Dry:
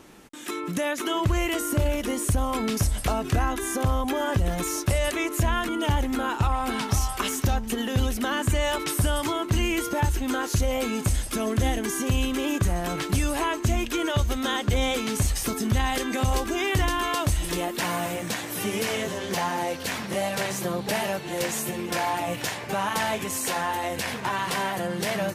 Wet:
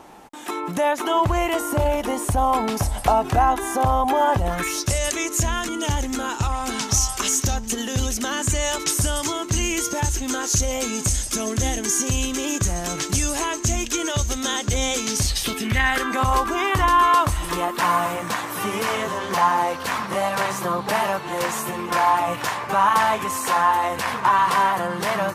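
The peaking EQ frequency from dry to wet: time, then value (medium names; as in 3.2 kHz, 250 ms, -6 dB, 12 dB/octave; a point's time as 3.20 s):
peaking EQ +14.5 dB 0.92 oct
4.47 s 820 Hz
4.88 s 6.5 kHz
15.07 s 6.5 kHz
16.14 s 1.1 kHz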